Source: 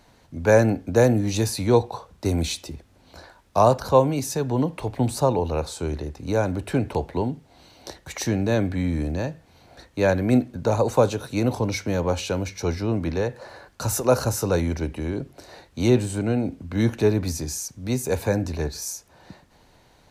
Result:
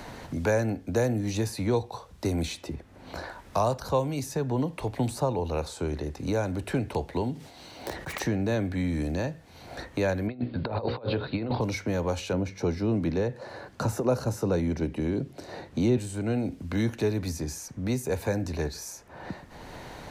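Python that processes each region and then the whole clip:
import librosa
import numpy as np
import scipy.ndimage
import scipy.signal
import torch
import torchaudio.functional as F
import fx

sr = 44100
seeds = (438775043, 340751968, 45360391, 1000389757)

y = fx.chain(x, sr, fx.self_delay(depth_ms=0.22),
    fx.low_shelf(hz=72.0, db=-10.5),
    fx.sustainer(db_per_s=94.0), at=(7.33, 8.2))
y = fx.chain(y, sr, fx.steep_lowpass(hz=4700.0, slope=96),
    fx.hum_notches(base_hz=60, count=9),
    fx.over_compress(threshold_db=-26.0, ratio=-0.5), at=(10.27, 11.61))
y = fx.chain(y, sr, fx.highpass(hz=150.0, slope=12),
    fx.tilt_eq(slope=-3.0), at=(12.33, 15.98))
y = fx.peak_eq(y, sr, hz=1900.0, db=2.5, octaves=0.24)
y = fx.band_squash(y, sr, depth_pct=70)
y = y * librosa.db_to_amplitude(-5.5)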